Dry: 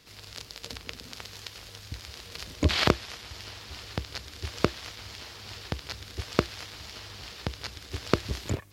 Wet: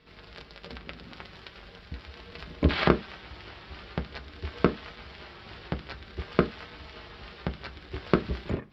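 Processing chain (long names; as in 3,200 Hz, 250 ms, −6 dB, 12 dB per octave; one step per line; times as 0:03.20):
high-frequency loss of the air 300 metres
on a send at −7 dB: convolution reverb RT60 0.20 s, pre-delay 3 ms
on the sum: flanger 0.44 Hz, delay 4.5 ms, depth 1 ms, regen −44%
notch filter 6,300 Hz, Q 5.5
level +5.5 dB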